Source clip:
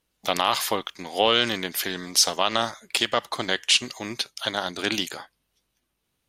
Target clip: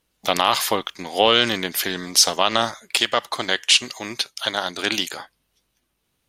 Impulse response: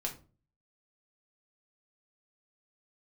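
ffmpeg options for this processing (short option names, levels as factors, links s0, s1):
-filter_complex "[0:a]asettb=1/sr,asplit=3[s0][s1][s2];[s0]atrim=end=2.824[s3];[s1]atrim=start=2.82:end=5.17,asetpts=PTS-STARTPTS,afade=t=in:d=0.004:c=qsin,afade=t=out:st=2.346:d=0.004:c=qsin,lowshelf=f=360:g=-6[s4];[s2]atrim=start=5.166[s5];[s3][s4]acrossfade=d=0.004:c1=hsin:c2=qsin[s6];[s6][s5]acrossfade=d=0.004:c1=qsin:c2=hsin,volume=1.58"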